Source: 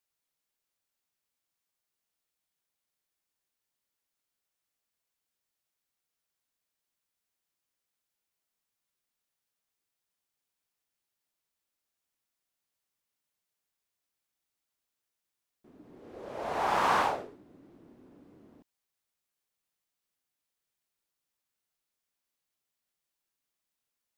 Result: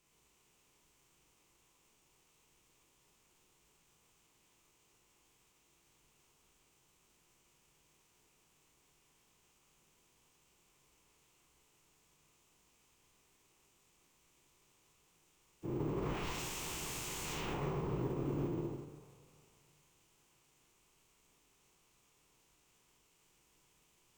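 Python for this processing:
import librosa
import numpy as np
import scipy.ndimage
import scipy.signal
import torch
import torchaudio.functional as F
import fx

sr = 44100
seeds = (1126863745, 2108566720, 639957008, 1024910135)

p1 = fx.over_compress(x, sr, threshold_db=-34.0, ratio=-1.0)
p2 = x + F.gain(torch.from_numpy(p1), -1.0).numpy()
p3 = fx.rev_double_slope(p2, sr, seeds[0], early_s=0.96, late_s=3.0, knee_db=-19, drr_db=2.5)
p4 = fx.quant_dither(p3, sr, seeds[1], bits=12, dither='none')
p5 = p4 + fx.echo_multitap(p4, sr, ms=(48, 50, 57, 148, 158), db=(-9.0, -8.5, -12.5, -7.0, -10.5), dry=0)
p6 = 10.0 ** (-40.0 / 20.0) * (np.abs((p5 / 10.0 ** (-40.0 / 20.0) + 3.0) % 4.0 - 2.0) - 1.0)
p7 = fx.pitch_keep_formants(p6, sr, semitones=-12.0)
p8 = fx.low_shelf(p7, sr, hz=490.0, db=10.0)
p9 = np.repeat(scipy.signal.resample_poly(p8, 1, 2), 2)[:len(p8)]
p10 = fx.ripple_eq(p9, sr, per_octave=0.71, db=7)
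y = F.gain(torch.from_numpy(p10), 2.5).numpy()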